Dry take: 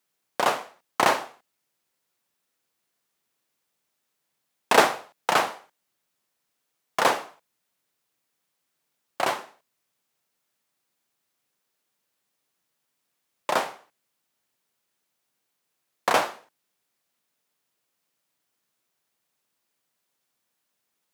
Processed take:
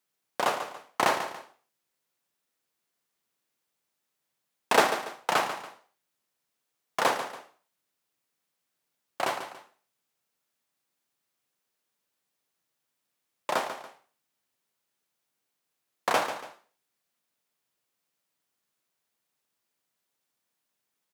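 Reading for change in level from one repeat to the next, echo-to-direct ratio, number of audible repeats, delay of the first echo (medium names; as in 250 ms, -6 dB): -9.0 dB, -10.0 dB, 2, 142 ms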